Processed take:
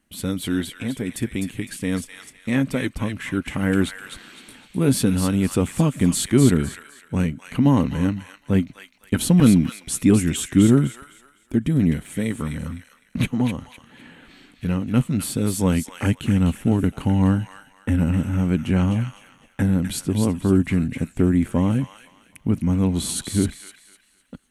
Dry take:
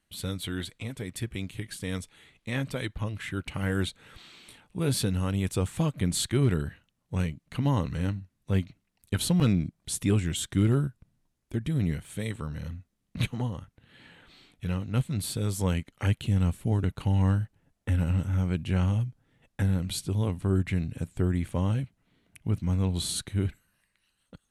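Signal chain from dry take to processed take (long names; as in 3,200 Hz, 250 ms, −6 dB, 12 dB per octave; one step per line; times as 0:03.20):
graphic EQ with 15 bands 100 Hz −5 dB, 250 Hz +9 dB, 4,000 Hz −6 dB
on a send: delay with a high-pass on its return 254 ms, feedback 31%, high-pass 1,500 Hz, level −5 dB
on the sum: level +6.5 dB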